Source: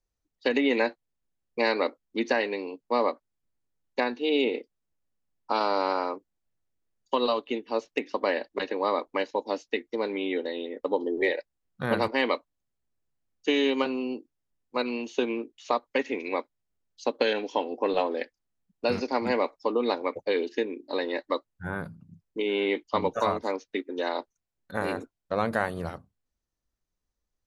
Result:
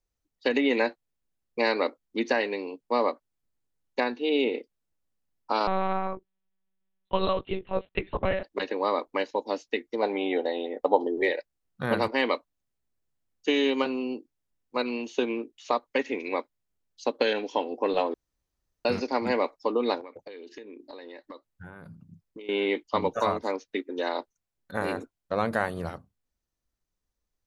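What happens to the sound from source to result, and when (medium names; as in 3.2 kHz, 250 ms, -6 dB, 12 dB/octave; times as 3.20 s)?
4.16–4.58 s: distance through air 67 m
5.67–8.43 s: monotone LPC vocoder at 8 kHz 190 Hz
10.02–11.07 s: peaking EQ 740 Hz +14.5 dB 0.6 oct
18.14–18.85 s: room tone
20.00–22.49 s: compression 12:1, threshold -39 dBFS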